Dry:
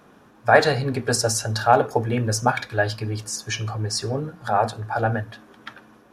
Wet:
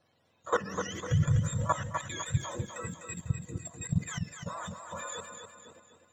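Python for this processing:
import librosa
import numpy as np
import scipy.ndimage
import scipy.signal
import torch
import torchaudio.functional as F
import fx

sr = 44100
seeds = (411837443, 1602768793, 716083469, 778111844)

y = fx.octave_mirror(x, sr, pivot_hz=900.0)
y = fx.low_shelf(y, sr, hz=460.0, db=11.5, at=(0.74, 1.36))
y = fx.level_steps(y, sr, step_db=16)
y = fx.echo_feedback(y, sr, ms=251, feedback_pct=44, wet_db=-7.0)
y = y * 10.0 ** (-7.5 / 20.0)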